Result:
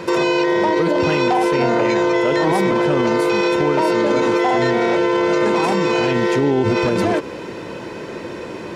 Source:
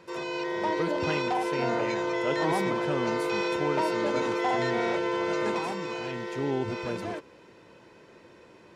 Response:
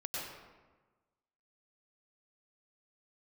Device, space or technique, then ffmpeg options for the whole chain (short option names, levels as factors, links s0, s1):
mastering chain: -af "equalizer=f=280:t=o:w=2.2:g=3.5,acompressor=threshold=0.0282:ratio=2,asoftclip=type=hard:threshold=0.0841,alimiter=level_in=28.2:limit=0.891:release=50:level=0:latency=1,volume=0.398"